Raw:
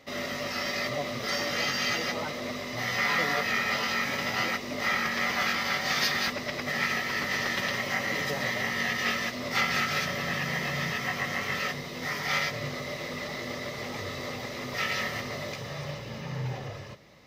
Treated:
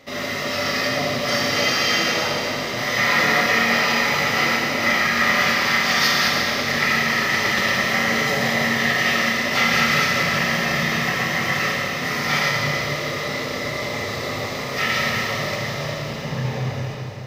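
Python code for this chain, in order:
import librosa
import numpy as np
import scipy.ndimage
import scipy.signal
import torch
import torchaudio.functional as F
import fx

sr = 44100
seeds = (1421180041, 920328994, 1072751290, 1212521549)

y = fx.rev_schroeder(x, sr, rt60_s=3.1, comb_ms=27, drr_db=-2.0)
y = y * 10.0 ** (5.5 / 20.0)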